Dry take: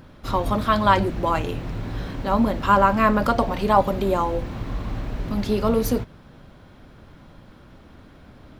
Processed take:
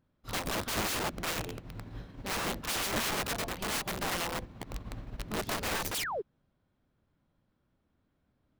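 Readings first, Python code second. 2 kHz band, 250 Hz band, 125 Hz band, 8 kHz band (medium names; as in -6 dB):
-6.0 dB, -17.0 dB, -14.5 dB, +6.5 dB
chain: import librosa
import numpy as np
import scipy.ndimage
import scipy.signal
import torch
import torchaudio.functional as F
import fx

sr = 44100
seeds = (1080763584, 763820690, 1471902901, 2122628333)

y = fx.low_shelf(x, sr, hz=84.0, db=-9.5)
y = fx.spec_paint(y, sr, seeds[0], shape='fall', start_s=5.94, length_s=0.28, low_hz=350.0, high_hz=5200.0, level_db=-24.0)
y = fx.low_shelf(y, sr, hz=190.0, db=8.0)
y = (np.mod(10.0 ** (18.0 / 20.0) * y + 1.0, 2.0) - 1.0) / 10.0 ** (18.0 / 20.0)
y = fx.upward_expand(y, sr, threshold_db=-36.0, expansion=2.5)
y = F.gain(torch.from_numpy(y), -7.5).numpy()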